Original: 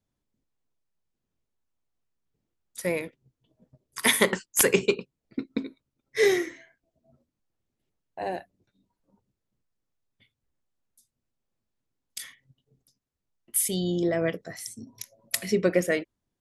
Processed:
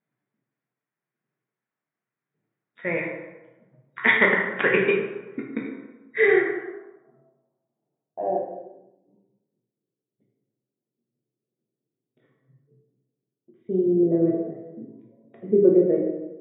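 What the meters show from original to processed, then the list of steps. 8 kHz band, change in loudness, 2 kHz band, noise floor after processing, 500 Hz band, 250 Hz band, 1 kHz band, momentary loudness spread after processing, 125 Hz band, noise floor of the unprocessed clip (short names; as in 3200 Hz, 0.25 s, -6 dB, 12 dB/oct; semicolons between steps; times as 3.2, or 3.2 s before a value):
under -40 dB, +4.0 dB, +7.0 dB, under -85 dBFS, +5.0 dB, +6.0 dB, +4.5 dB, 19 LU, +1.5 dB, -84 dBFS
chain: plate-style reverb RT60 1.1 s, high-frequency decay 0.6×, DRR -1.5 dB; FFT band-pass 110–3800 Hz; low-pass sweep 1900 Hz -> 400 Hz, 6.18–9.05; gain -2 dB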